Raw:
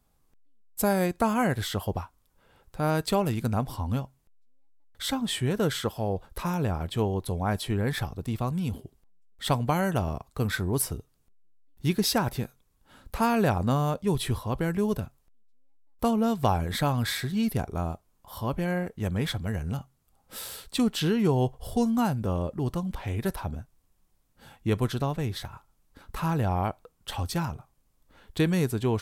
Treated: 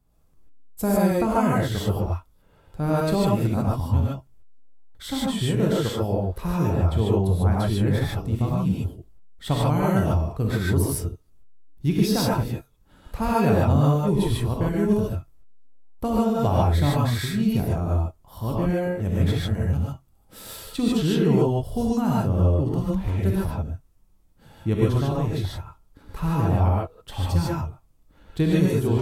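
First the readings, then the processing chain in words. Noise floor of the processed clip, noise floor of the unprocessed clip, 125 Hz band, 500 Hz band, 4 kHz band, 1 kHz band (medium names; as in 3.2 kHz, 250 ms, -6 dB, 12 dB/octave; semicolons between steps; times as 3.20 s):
-59 dBFS, -68 dBFS, +7.0 dB, +4.5 dB, 0.0 dB, +2.0 dB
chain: bass shelf 480 Hz +10 dB; gated-style reverb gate 170 ms rising, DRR -5 dB; trim -6.5 dB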